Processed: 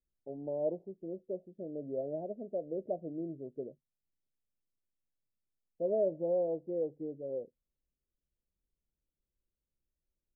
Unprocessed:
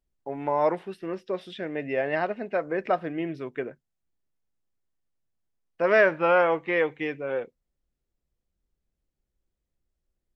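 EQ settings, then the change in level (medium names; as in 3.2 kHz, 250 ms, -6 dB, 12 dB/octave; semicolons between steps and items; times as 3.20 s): elliptic low-pass 620 Hz, stop band 50 dB; -8.0 dB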